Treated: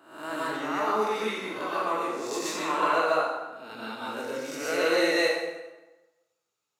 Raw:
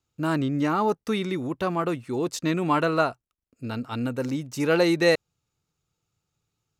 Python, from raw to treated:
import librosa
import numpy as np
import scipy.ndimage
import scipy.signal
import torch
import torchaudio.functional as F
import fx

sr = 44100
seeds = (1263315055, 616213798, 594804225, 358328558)

y = fx.spec_swells(x, sr, rise_s=0.64)
y = scipy.signal.sosfilt(scipy.signal.butter(2, 460.0, 'highpass', fs=sr, output='sos'), y)
y = fx.rev_plate(y, sr, seeds[0], rt60_s=1.1, hf_ratio=0.75, predelay_ms=105, drr_db=-7.0)
y = y * 10.0 ** (-9.0 / 20.0)